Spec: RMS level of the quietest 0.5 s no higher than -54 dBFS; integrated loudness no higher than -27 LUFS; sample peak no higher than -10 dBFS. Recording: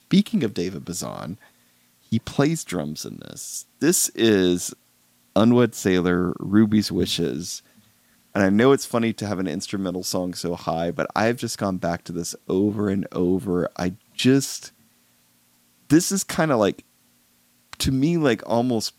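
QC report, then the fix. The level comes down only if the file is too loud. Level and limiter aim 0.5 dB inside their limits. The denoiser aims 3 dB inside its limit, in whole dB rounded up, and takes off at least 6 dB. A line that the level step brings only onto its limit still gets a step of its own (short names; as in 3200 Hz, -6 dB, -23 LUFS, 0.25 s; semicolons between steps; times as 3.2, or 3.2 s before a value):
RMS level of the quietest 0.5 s -61 dBFS: OK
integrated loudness -22.5 LUFS: fail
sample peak -5.0 dBFS: fail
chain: gain -5 dB; limiter -10.5 dBFS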